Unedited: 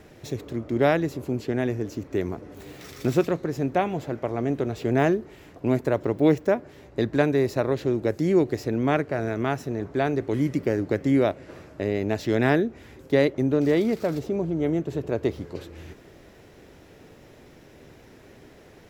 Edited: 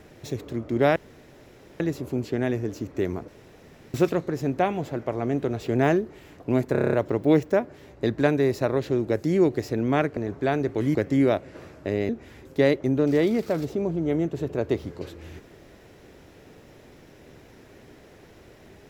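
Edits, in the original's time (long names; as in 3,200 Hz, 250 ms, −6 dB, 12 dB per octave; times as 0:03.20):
0:00.96: splice in room tone 0.84 s
0:02.44–0:03.10: fill with room tone
0:05.88: stutter 0.03 s, 8 plays
0:09.12–0:09.70: remove
0:10.48–0:10.89: remove
0:12.03–0:12.63: remove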